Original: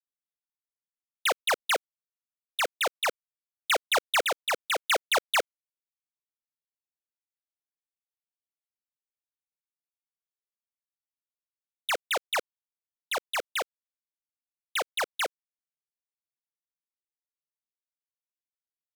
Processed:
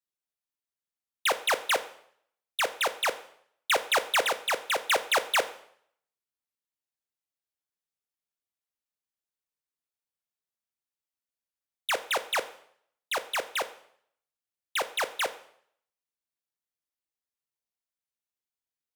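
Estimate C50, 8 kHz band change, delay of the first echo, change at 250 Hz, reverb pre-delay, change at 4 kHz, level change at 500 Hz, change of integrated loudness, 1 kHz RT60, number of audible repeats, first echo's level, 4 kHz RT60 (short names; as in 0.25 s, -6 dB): 15.0 dB, +0.5 dB, none, +0.5 dB, 6 ms, 0.0 dB, +0.5 dB, 0.0 dB, 0.65 s, none, none, 0.60 s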